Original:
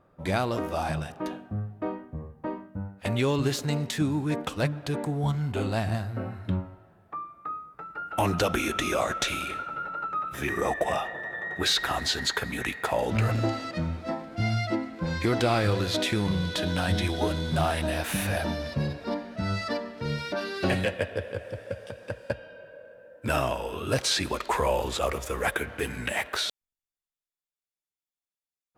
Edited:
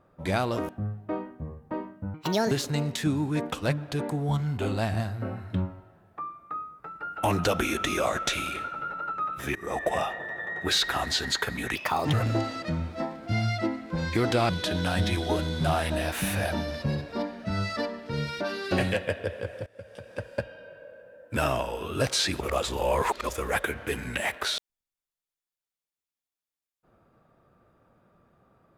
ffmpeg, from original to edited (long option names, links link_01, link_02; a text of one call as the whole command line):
ffmpeg -i in.wav -filter_complex "[0:a]asplit=11[link_01][link_02][link_03][link_04][link_05][link_06][link_07][link_08][link_09][link_10][link_11];[link_01]atrim=end=0.692[link_12];[link_02]atrim=start=1.418:end=2.874[link_13];[link_03]atrim=start=2.87:end=3.46,asetpts=PTS-STARTPTS,asetrate=69678,aresample=44100[link_14];[link_04]atrim=start=3.456:end=10.5,asetpts=PTS-STARTPTS,afade=type=out:start_time=7.04:duration=0.004:curve=hsin:silence=0.0944061[link_15];[link_05]atrim=start=10.5:end=12.704,asetpts=PTS-STARTPTS,afade=type=in:duration=0.3:silence=0.0944061[link_16];[link_06]atrim=start=12.7:end=13.22,asetpts=PTS-STARTPTS,asetrate=60417,aresample=44100[link_17];[link_07]atrim=start=13.216:end=15.582[link_18];[link_08]atrim=start=16.408:end=21.58,asetpts=PTS-STARTPTS,afade=type=out:start_time=5.168:duration=0.004:curve=hsin:silence=0.1[link_19];[link_09]atrim=start=21.58:end=24.322,asetpts=PTS-STARTPTS,afade=type=in:duration=0.54:silence=0.1[link_20];[link_10]atrim=start=24.318:end=25.212,asetpts=PTS-STARTPTS,areverse[link_21];[link_11]atrim=start=25.208[link_22];[link_12][link_13]acrossfade=duration=0.004:curve1=hsin:curve2=hsin[link_23];[link_23][link_14]acrossfade=duration=0.004:curve1=hsin:curve2=hsin[link_24];[link_15][link_16]concat=n=2:v=0:a=1[link_25];[link_24][link_25]acrossfade=duration=0.004:curve1=hsin:curve2=hsin[link_26];[link_26][link_17]acrossfade=duration=0.004:curve1=hsin:curve2=hsin[link_27];[link_27][link_18]acrossfade=duration=0.004:curve1=hsin:curve2=hsin[link_28];[link_19][link_20]concat=n=2:v=0:a=1[link_29];[link_28][link_29]acrossfade=duration=0.004:curve1=hsin:curve2=hsin[link_30];[link_30][link_21]acrossfade=duration=0.004:curve1=hsin:curve2=hsin[link_31];[link_31][link_22]acrossfade=duration=0.004:curve1=hsin:curve2=hsin" out.wav